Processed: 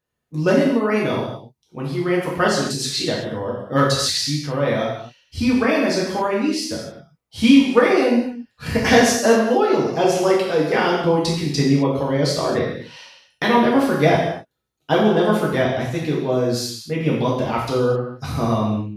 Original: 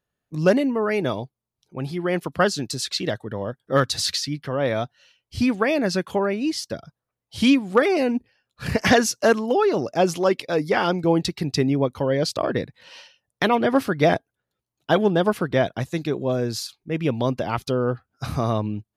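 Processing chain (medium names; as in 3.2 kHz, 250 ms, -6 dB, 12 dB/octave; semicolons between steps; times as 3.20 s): gated-style reverb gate 290 ms falling, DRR -5 dB; trim -2.5 dB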